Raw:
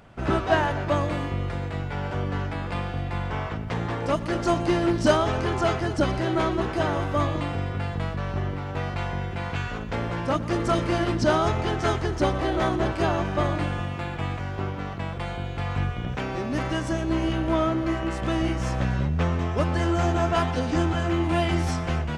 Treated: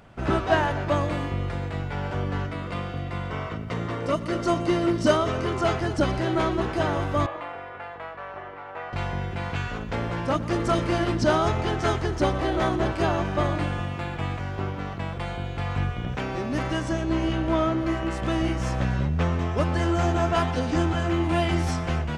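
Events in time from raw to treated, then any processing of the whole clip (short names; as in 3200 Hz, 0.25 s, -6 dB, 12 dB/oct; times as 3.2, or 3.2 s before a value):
2.46–5.65 notch comb 830 Hz
7.26–8.93 three-band isolator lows -24 dB, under 470 Hz, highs -19 dB, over 2500 Hz
16.84–17.8 LPF 8900 Hz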